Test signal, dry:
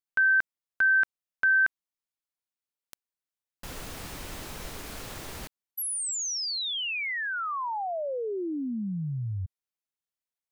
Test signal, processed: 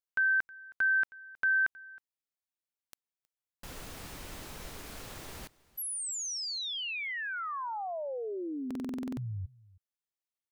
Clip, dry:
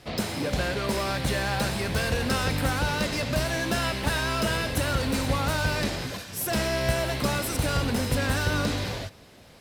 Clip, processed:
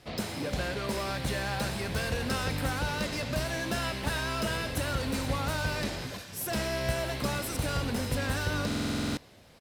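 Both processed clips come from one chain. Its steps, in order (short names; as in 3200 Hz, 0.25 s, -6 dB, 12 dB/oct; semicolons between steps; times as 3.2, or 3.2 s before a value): echo 0.317 s -22.5 dB; stuck buffer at 8.66, samples 2048, times 10; gain -5 dB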